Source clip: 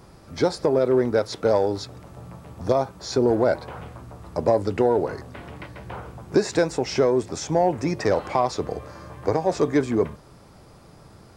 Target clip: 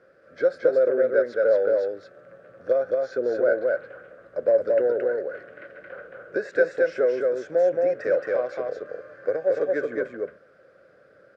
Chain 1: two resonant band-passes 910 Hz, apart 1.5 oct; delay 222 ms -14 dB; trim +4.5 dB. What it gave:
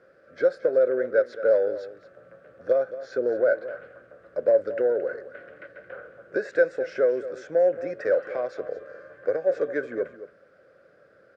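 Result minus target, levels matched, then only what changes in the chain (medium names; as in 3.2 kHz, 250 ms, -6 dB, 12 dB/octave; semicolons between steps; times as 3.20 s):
echo-to-direct -11.5 dB
change: delay 222 ms -2.5 dB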